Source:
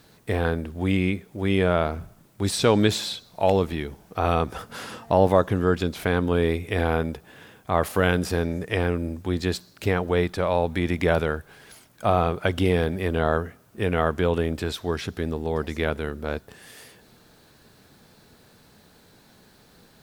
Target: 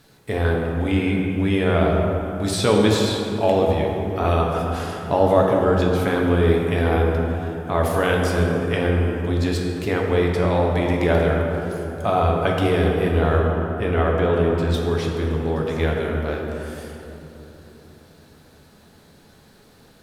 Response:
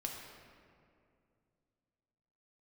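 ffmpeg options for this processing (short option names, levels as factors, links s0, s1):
-filter_complex "[0:a]asettb=1/sr,asplit=3[s0][s1][s2];[s0]atrim=end=13.394[s3];[s1]atrim=start=13.39:end=14.74,asetpts=PTS-STARTPTS,afade=t=in:d=0.004:c=qsin,afade=t=out:st=1.346:d=0.004:c=qsin,equalizer=f=11000:w=0.34:g=-7[s4];[s2]atrim=start=14.736[s5];[s3][s4]acrossfade=d=0.004:c1=hsin:c2=qsin[s6];[s6][s5]acrossfade=d=0.004:c1=qsin:c2=hsin[s7];[1:a]atrim=start_sample=2205,asetrate=26901,aresample=44100[s8];[s7][s8]afir=irnorm=-1:irlink=0"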